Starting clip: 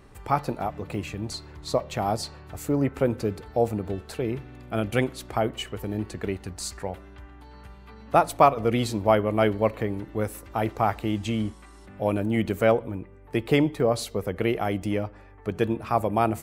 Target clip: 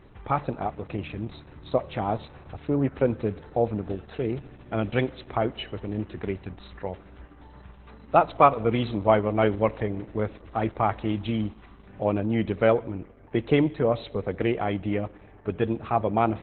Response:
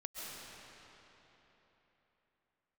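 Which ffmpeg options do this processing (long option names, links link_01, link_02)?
-filter_complex "[0:a]asplit=2[link_01][link_02];[link_02]equalizer=frequency=7500:width_type=o:width=0.67:gain=-11.5[link_03];[1:a]atrim=start_sample=2205,asetrate=70560,aresample=44100[link_04];[link_03][link_04]afir=irnorm=-1:irlink=0,volume=-18dB[link_05];[link_01][link_05]amix=inputs=2:normalize=0" -ar 48000 -c:a libopus -b:a 8k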